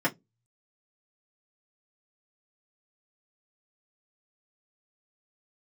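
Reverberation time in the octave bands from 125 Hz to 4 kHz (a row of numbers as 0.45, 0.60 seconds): 0.40, 0.25, 0.20, 0.10, 0.10, 0.10 seconds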